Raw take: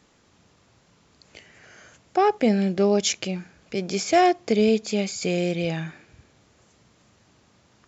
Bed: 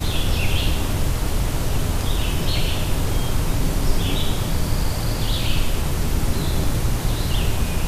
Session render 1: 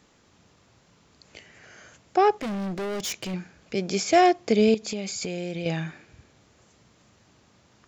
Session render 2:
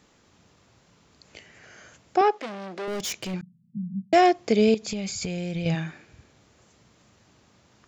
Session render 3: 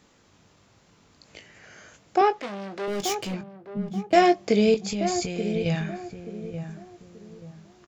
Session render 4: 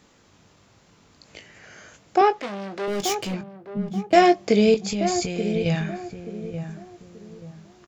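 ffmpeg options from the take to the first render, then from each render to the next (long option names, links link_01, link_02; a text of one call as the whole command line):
ffmpeg -i in.wav -filter_complex "[0:a]asettb=1/sr,asplit=3[link_01][link_02][link_03];[link_01]atrim=end=2.364[link_04];[link_02]atrim=start=2.36:end=3.34,asetpts=PTS-STARTPTS,afade=type=in:duration=0.004:curve=qsin,afade=type=out:start_time=0.976:duration=0.004:curve=qsin,volume=28.5dB,asoftclip=hard,volume=-28.5dB[link_05];[link_03]atrim=start=3.336[link_06];[link_04][link_05]acrossfade=duration=0.004:curve1=hsin:curve2=qsin[link_07];[link_07][link_06]acrossfade=duration=0.004:curve1=qsin:curve2=hsin,asettb=1/sr,asplit=3[link_08][link_09][link_10];[link_08]atrim=end=4.744[link_11];[link_09]atrim=start=4.74:end=5.66,asetpts=PTS-STARTPTS,afade=type=in:duration=0.004:curve=qsin,afade=type=out:start_time=0.916:duration=0.004:curve=qsin,acompressor=threshold=-27dB:ratio=6:attack=3.2:release=140:knee=1:detection=peak[link_12];[link_10]atrim=start=5.656[link_13];[link_11][link_12]acrossfade=duration=0.004:curve1=hsin:curve2=qsin[link_14];[link_14][link_13]acrossfade=duration=0.004:curve1=qsin:curve2=hsin" out.wav
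ffmpeg -i in.wav -filter_complex "[0:a]asettb=1/sr,asplit=3[link_01][link_02][link_03];[link_01]atrim=end=2.214[link_04];[link_02]atrim=start=2.21:end=2.88,asetpts=PTS-STARTPTS,afade=type=in:duration=0.004:curve=qsin,afade=type=out:start_time=0.666:duration=0.004:curve=qsin,highpass=360,lowpass=5800[link_05];[link_03]atrim=start=2.876[link_06];[link_04][link_05]acrossfade=duration=0.004:curve1=hsin:curve2=qsin[link_07];[link_07][link_06]acrossfade=duration=0.004:curve1=qsin:curve2=hsin,asettb=1/sr,asplit=3[link_08][link_09][link_10];[link_08]atrim=end=3.414[link_11];[link_09]atrim=start=3.41:end=4.13,asetpts=PTS-STARTPTS,afade=type=in:duration=0.004:curve=qsin,afade=type=out:start_time=0.716:duration=0.004:curve=qsin,asuperpass=centerf=160:order=20:qfactor=1.3[link_12];[link_10]atrim=start=4.126[link_13];[link_11][link_12]acrossfade=duration=0.004:curve1=hsin:curve2=qsin[link_14];[link_14][link_13]acrossfade=duration=0.004:curve1=qsin:curve2=hsin,asplit=3[link_15][link_16][link_17];[link_15]afade=type=out:start_time=4.86:duration=0.02[link_18];[link_16]asubboost=boost=5:cutoff=140,afade=type=in:start_time=4.86:duration=0.02,afade=type=out:start_time=5.74:duration=0.02[link_19];[link_17]afade=type=in:start_time=5.74:duration=0.02[link_20];[link_18][link_19][link_20]amix=inputs=3:normalize=0" out.wav
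ffmpeg -i in.wav -filter_complex "[0:a]asplit=2[link_01][link_02];[link_02]adelay=20,volume=-8.5dB[link_03];[link_01][link_03]amix=inputs=2:normalize=0,asplit=2[link_04][link_05];[link_05]adelay=881,lowpass=frequency=840:poles=1,volume=-8dB,asplit=2[link_06][link_07];[link_07]adelay=881,lowpass=frequency=840:poles=1,volume=0.35,asplit=2[link_08][link_09];[link_09]adelay=881,lowpass=frequency=840:poles=1,volume=0.35,asplit=2[link_10][link_11];[link_11]adelay=881,lowpass=frequency=840:poles=1,volume=0.35[link_12];[link_06][link_08][link_10][link_12]amix=inputs=4:normalize=0[link_13];[link_04][link_13]amix=inputs=2:normalize=0" out.wav
ffmpeg -i in.wav -af "volume=2.5dB" out.wav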